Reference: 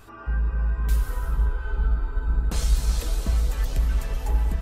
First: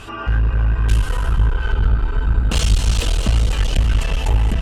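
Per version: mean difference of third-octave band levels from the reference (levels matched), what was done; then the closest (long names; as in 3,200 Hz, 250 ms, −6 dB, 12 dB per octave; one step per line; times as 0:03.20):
4.0 dB: low-pass filter 10,000 Hz 24 dB per octave
parametric band 2,900 Hz +12 dB 0.41 octaves
in parallel at −1.5 dB: downward compressor, threshold −28 dBFS, peak gain reduction 13.5 dB
on the sum: asymmetric clip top −26.5 dBFS
level +7.5 dB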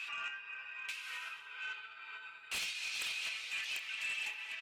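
16.0 dB: downward compressor 10 to 1, threshold −28 dBFS, peak gain reduction 14.5 dB
four-pole ladder band-pass 2,700 Hz, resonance 75%
sine wavefolder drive 13 dB, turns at −38.5 dBFS
double-tracking delay 29 ms −13 dB
level +4.5 dB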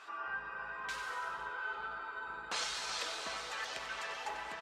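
10.0 dB: high-pass filter 1,000 Hz 12 dB per octave
high-frequency loss of the air 120 metres
on a send: single-tap delay 94 ms −10.5 dB
on the sum: level +4 dB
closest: first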